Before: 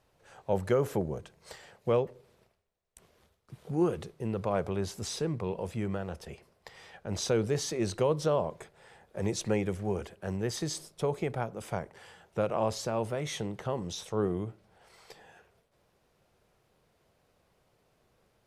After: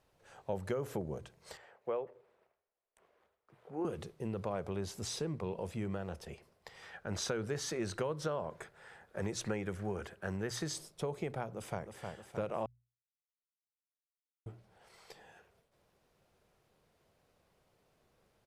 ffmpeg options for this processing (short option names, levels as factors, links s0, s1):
-filter_complex "[0:a]asettb=1/sr,asplit=3[s0][s1][s2];[s0]atrim=end=1.574[s3];[s1]atrim=start=1.57:end=3.85,asetpts=PTS-STARTPTS,afade=t=in:d=0.004:c=qsin,afade=t=out:st=2.276:d=0.004:c=qsin,acrossover=split=350 2400:gain=0.141 1 0.158[s4][s5][s6];[s4][s5][s6]amix=inputs=3:normalize=0[s7];[s2]atrim=start=3.846[s8];[s3][s7]acrossfade=d=0.004:c1=hsin:c2=qsin[s9];[s9][s8]acrossfade=d=0.004:c1=qsin:c2=hsin,asettb=1/sr,asplit=3[s10][s11][s12];[s10]atrim=end=6.824[s13];[s11]atrim=start=6.82:end=10.72,asetpts=PTS-STARTPTS,afade=t=in:d=0.004:c=qsin,afade=t=out:st=3.896:d=0.004:c=qsin,equalizer=f=1500:w=1.9:g=8.5[s14];[s12]atrim=start=10.716[s15];[s13][s14]acrossfade=d=0.004:c1=hsin:c2=qsin[s16];[s16][s15]acrossfade=d=0.004:c1=qsin:c2=hsin,asplit=2[s17][s18];[s18]afade=t=in:st=11.55:d=0.01,afade=t=out:st=12:d=0.01,aecho=0:1:310|620|930|1240|1550|1860|2170|2480|2790:0.446684|0.290344|0.188724|0.12267|0.0797358|0.0518283|0.0336884|0.0218974|0.0142333[s19];[s17][s19]amix=inputs=2:normalize=0,asplit=3[s20][s21][s22];[s20]atrim=end=12.66,asetpts=PTS-STARTPTS,afade=t=out:st=12.656:d=0.004:c=hsin[s23];[s21]atrim=start=12.66:end=14.46,asetpts=PTS-STARTPTS,volume=0[s24];[s22]atrim=start=14.46,asetpts=PTS-STARTPTS,afade=t=in:d=0.004:c=hsin[s25];[s23][s24][s25]concat=n=3:v=0:a=1,bandreject=f=60:t=h:w=6,bandreject=f=120:t=h:w=6,acompressor=threshold=0.0316:ratio=4,volume=0.708"